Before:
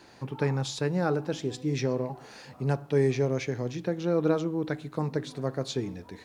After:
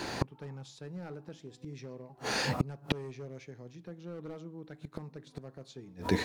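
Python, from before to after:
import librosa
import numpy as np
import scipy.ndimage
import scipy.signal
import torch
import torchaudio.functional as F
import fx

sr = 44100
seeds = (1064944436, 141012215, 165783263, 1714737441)

y = np.clip(x, -10.0 ** (-21.0 / 20.0), 10.0 ** (-21.0 / 20.0))
y = fx.dynamic_eq(y, sr, hz=170.0, q=3.3, threshold_db=-45.0, ratio=4.0, max_db=5)
y = fx.gate_flip(y, sr, shuts_db=-29.0, range_db=-33)
y = y * librosa.db_to_amplitude(16.0)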